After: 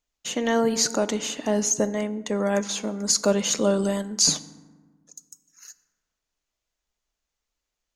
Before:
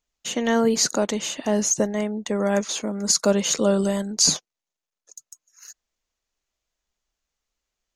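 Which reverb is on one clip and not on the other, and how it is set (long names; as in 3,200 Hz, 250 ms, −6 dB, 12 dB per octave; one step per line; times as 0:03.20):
feedback delay network reverb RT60 1.4 s, low-frequency decay 1.35×, high-frequency decay 0.45×, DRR 13 dB
level −1.5 dB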